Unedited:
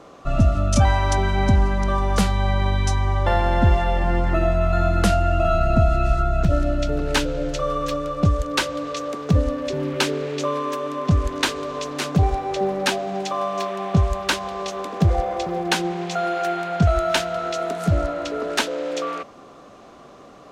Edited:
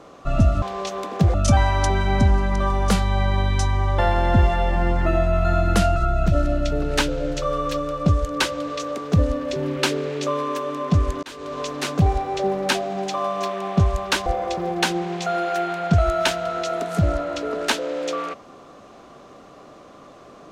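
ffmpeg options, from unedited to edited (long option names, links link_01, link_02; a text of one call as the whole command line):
ffmpeg -i in.wav -filter_complex "[0:a]asplit=6[link_01][link_02][link_03][link_04][link_05][link_06];[link_01]atrim=end=0.622[link_07];[link_02]atrim=start=14.428:end=15.152[link_08];[link_03]atrim=start=0.618:end=5.242[link_09];[link_04]atrim=start=6.128:end=11.4,asetpts=PTS-STARTPTS,afade=type=out:start_time=5.268:duration=0.004:curve=hsin[link_10];[link_05]atrim=start=11.4:end=14.432,asetpts=PTS-STARTPTS,afade=type=in:duration=0.35[link_11];[link_06]atrim=start=15.148[link_12];[link_07][link_08]acrossfade=duration=0.004:curve1=hsin:curve2=hsin[link_13];[link_13][link_09]acrossfade=duration=0.004:curve1=hsin:curve2=hsin[link_14];[link_10][link_11]concat=n=2:v=0:a=1[link_15];[link_14][link_15]acrossfade=duration=0.004:curve1=hsin:curve2=hsin[link_16];[link_16][link_12]acrossfade=duration=0.004:curve1=hsin:curve2=hsin" out.wav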